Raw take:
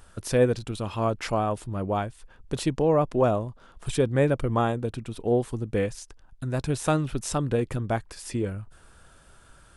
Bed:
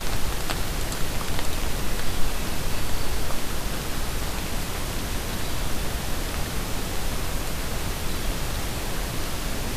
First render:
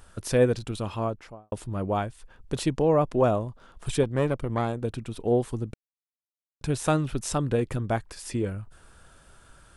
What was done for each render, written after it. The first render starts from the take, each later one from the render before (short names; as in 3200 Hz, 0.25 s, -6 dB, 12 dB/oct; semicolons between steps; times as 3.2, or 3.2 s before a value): 0.8–1.52 studio fade out; 4.03–4.82 tube stage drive 15 dB, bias 0.75; 5.74–6.61 mute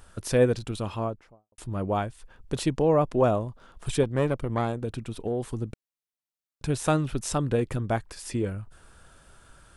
0.9–1.58 studio fade out; 4.76–5.6 compressor, threshold -24 dBFS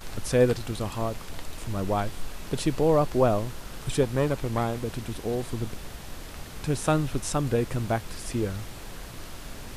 add bed -12 dB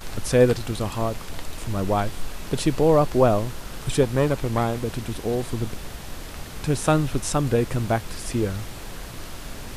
gain +4 dB